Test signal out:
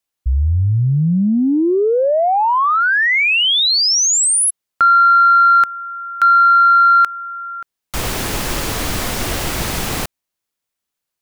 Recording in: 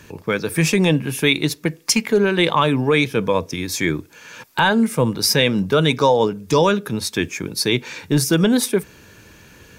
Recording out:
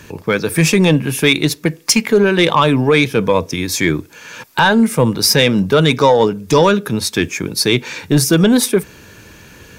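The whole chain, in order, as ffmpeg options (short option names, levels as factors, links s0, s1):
-af "acontrast=39"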